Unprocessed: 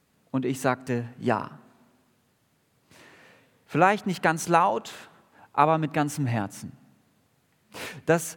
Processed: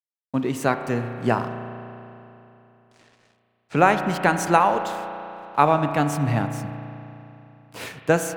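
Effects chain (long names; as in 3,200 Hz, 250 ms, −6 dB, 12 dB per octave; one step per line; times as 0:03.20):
dead-zone distortion −50.5 dBFS
0:01.50–0:03.77: Savitzky-Golay smoothing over 9 samples
spring reverb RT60 3.1 s, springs 34 ms, chirp 60 ms, DRR 7.5 dB
level +3 dB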